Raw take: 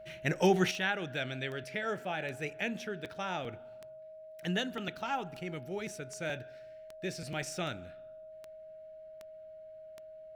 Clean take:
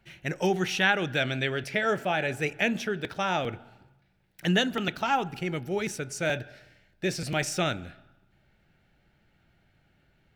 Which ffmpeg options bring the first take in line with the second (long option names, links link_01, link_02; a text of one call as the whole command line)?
ffmpeg -i in.wav -af "adeclick=threshold=4,bandreject=frequency=630:width=30,asetnsamples=nb_out_samples=441:pad=0,asendcmd='0.71 volume volume 9dB',volume=0dB" out.wav